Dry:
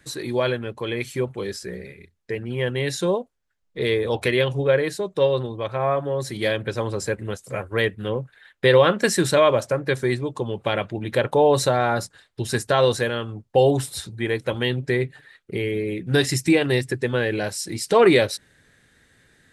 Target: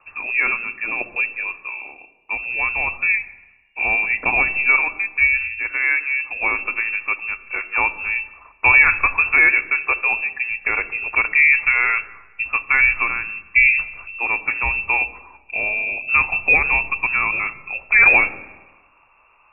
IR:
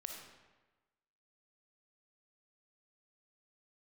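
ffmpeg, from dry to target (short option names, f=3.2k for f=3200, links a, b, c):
-filter_complex "[0:a]lowpass=f=2.4k:t=q:w=0.5098,lowpass=f=2.4k:t=q:w=0.6013,lowpass=f=2.4k:t=q:w=0.9,lowpass=f=2.4k:t=q:w=2.563,afreqshift=-2800,asplit=2[a][b];[b]aemphasis=mode=reproduction:type=bsi[c];[1:a]atrim=start_sample=2205,lowshelf=f=300:g=11.5[d];[c][d]afir=irnorm=-1:irlink=0,volume=-8.5dB[e];[a][e]amix=inputs=2:normalize=0,volume=1.5dB"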